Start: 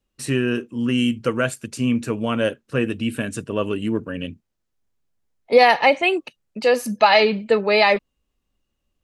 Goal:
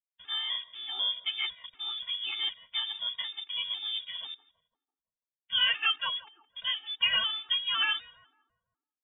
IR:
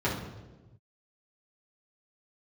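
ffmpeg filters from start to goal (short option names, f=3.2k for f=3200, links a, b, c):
-filter_complex "[0:a]asubboost=boost=4.5:cutoff=120,acrossover=split=110|490|2600[a][b][c][d];[b]acompressor=mode=upward:threshold=-36dB:ratio=2.5[e];[a][e][c][d]amix=inputs=4:normalize=0,bandreject=f=60:t=h:w=6,bandreject=f=120:t=h:w=6,bandreject=f=180:t=h:w=6,aeval=exprs='val(0)*gte(abs(val(0)),0.0266)':c=same,lowpass=f=3.1k:t=q:w=0.5098,lowpass=f=3.1k:t=q:w=0.6013,lowpass=f=3.1k:t=q:w=0.9,lowpass=f=3.1k:t=q:w=2.563,afreqshift=-3600,bandreject=f=670:w=12,asplit=2[f][g];[g]adelay=167,lowpass=f=1k:p=1,volume=-14dB,asplit=2[h][i];[i]adelay=167,lowpass=f=1k:p=1,volume=0.55,asplit=2[j][k];[k]adelay=167,lowpass=f=1k:p=1,volume=0.55,asplit=2[l][m];[m]adelay=167,lowpass=f=1k:p=1,volume=0.55,asplit=2[n][o];[o]adelay=167,lowpass=f=1k:p=1,volume=0.55,asplit=2[p][q];[q]adelay=167,lowpass=f=1k:p=1,volume=0.55[r];[f][h][j][l][n][p][r]amix=inputs=7:normalize=0,aeval=exprs='val(0)*sin(2*PI*100*n/s)':c=same,equalizer=f=570:t=o:w=1.7:g=-11.5,afftfilt=real='re*gt(sin(2*PI*2*pts/sr)*(1-2*mod(floor(b*sr/1024/230),2)),0)':imag='im*gt(sin(2*PI*2*pts/sr)*(1-2*mod(floor(b*sr/1024/230),2)),0)':win_size=1024:overlap=0.75,volume=-3.5dB"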